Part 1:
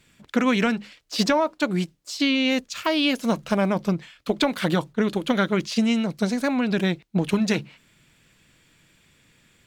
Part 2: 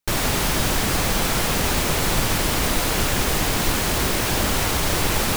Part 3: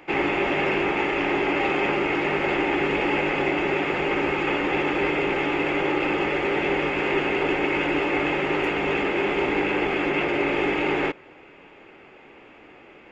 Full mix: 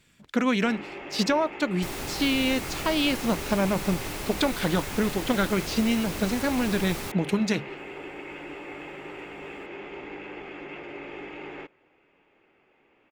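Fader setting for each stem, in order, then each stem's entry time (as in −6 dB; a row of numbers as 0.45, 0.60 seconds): −3.0, −14.0, −16.0 decibels; 0.00, 1.75, 0.55 seconds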